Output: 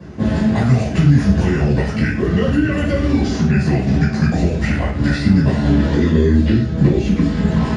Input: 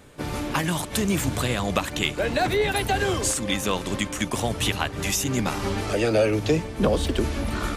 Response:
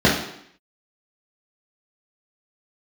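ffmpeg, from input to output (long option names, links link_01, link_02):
-filter_complex "[0:a]asetrate=32097,aresample=44100,atempo=1.37395,acrossover=split=130|2900|7500[link_01][link_02][link_03][link_04];[link_01]acompressor=threshold=-33dB:ratio=4[link_05];[link_02]acompressor=threshold=-33dB:ratio=4[link_06];[link_03]acompressor=threshold=-45dB:ratio=4[link_07];[link_04]acompressor=threshold=-46dB:ratio=4[link_08];[link_05][link_06][link_07][link_08]amix=inputs=4:normalize=0[link_09];[1:a]atrim=start_sample=2205,atrim=end_sample=6174[link_10];[link_09][link_10]afir=irnorm=-1:irlink=0,volume=-12dB"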